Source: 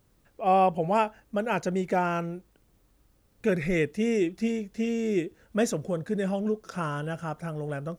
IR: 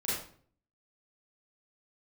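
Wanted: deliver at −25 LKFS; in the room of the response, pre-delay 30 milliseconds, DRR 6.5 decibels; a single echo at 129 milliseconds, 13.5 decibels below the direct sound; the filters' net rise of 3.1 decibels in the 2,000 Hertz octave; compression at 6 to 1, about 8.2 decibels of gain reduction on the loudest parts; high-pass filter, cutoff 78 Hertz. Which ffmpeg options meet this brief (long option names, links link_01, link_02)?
-filter_complex "[0:a]highpass=78,equalizer=frequency=2000:width_type=o:gain=4,acompressor=threshold=-26dB:ratio=6,aecho=1:1:129:0.211,asplit=2[link_01][link_02];[1:a]atrim=start_sample=2205,adelay=30[link_03];[link_02][link_03]afir=irnorm=-1:irlink=0,volume=-12.5dB[link_04];[link_01][link_04]amix=inputs=2:normalize=0,volume=5.5dB"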